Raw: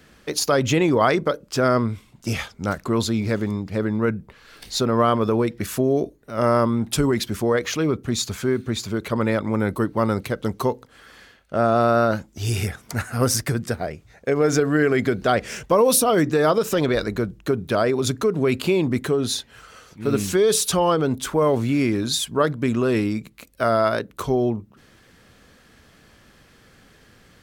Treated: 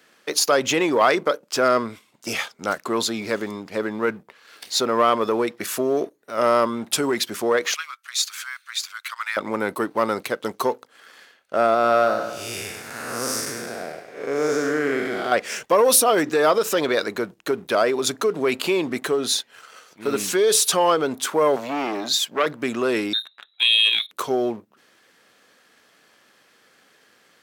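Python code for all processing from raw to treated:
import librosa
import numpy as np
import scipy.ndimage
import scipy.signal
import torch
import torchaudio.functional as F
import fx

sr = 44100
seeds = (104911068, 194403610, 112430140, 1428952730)

y = fx.chain(x, sr, fx.steep_highpass(hz=1200.0, slope=36),
    fx.notch(hz=7000.0, q=26.0), at=(7.74, 9.37))
y = fx.chain(y, sr, fx.spec_blur(span_ms=238.0),
    fx.echo_feedback(ms=101, feedback_pct=53, wet_db=-10), at=(11.74, 15.32))
y = fx.chain(y, sr, fx.highpass(hz=140.0, slope=12),
    fx.peak_eq(hz=9400.0, db=-12.0, octaves=0.36),
    fx.transformer_sat(knee_hz=1800.0), at=(21.56, 22.46))
y = fx.chain(y, sr, fx.freq_invert(carrier_hz=3900),
    fx.comb_fb(f0_hz=67.0, decay_s=0.21, harmonics='all', damping=0.0, mix_pct=30), at=(23.13, 24.11))
y = fx.leveller(y, sr, passes=1)
y = scipy.signal.sosfilt(scipy.signal.bessel(2, 470.0, 'highpass', norm='mag', fs=sr, output='sos'), y)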